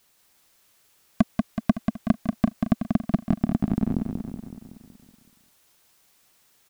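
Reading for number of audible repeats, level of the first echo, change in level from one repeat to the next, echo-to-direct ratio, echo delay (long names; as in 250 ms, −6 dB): 7, −5.0 dB, −5.0 dB, −3.5 dB, 187 ms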